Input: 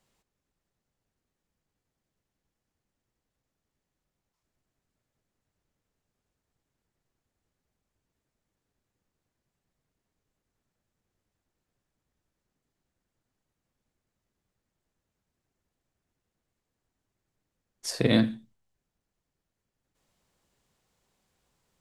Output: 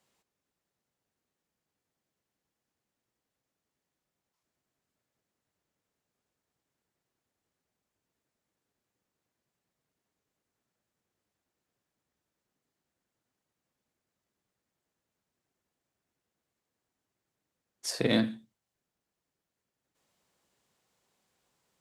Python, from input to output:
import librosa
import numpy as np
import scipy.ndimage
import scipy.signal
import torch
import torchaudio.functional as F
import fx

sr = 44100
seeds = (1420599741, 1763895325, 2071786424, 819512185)

p1 = fx.highpass(x, sr, hz=220.0, slope=6)
p2 = 10.0 ** (-28.5 / 20.0) * np.tanh(p1 / 10.0 ** (-28.5 / 20.0))
p3 = p1 + (p2 * librosa.db_to_amplitude(-11.0))
y = p3 * librosa.db_to_amplitude(-2.5)